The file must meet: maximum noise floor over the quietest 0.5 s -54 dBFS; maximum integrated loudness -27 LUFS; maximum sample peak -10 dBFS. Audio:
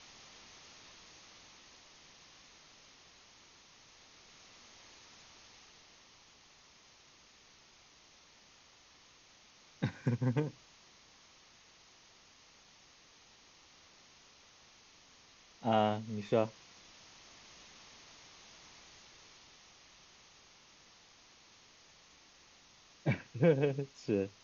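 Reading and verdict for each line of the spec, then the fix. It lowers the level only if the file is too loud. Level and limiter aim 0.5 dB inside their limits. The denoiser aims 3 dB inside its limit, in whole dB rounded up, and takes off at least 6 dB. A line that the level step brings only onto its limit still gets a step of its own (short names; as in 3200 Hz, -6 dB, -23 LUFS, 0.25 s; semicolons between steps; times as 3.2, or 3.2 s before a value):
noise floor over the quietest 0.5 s -62 dBFS: OK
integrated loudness -34.0 LUFS: OK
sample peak -16.0 dBFS: OK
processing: none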